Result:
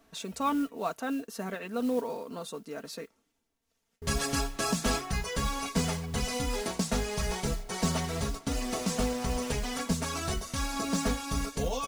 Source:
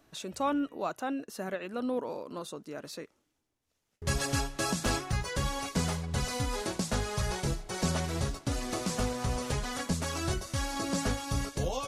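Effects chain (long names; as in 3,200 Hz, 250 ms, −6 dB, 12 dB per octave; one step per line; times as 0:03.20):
comb filter 4.4 ms, depth 61%
noise that follows the level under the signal 24 dB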